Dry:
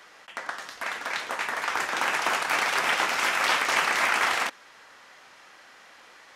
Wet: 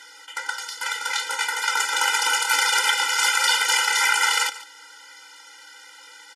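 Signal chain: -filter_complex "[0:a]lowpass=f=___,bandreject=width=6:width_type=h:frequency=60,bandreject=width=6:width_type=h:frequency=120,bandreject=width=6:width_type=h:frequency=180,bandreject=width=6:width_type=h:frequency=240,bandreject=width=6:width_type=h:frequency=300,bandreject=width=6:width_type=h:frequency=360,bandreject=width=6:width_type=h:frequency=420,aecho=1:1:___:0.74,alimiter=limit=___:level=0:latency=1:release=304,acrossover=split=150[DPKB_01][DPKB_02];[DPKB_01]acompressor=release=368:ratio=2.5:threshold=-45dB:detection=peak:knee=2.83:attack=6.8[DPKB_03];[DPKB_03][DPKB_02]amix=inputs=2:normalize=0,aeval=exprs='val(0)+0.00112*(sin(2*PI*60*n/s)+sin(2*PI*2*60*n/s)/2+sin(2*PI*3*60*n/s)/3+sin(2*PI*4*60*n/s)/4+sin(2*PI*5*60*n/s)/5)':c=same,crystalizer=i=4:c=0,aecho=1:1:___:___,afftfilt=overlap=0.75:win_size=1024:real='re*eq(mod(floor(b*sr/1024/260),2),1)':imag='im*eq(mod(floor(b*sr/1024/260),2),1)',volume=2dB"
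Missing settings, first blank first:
10k, 1.4, -11dB, 144, 0.15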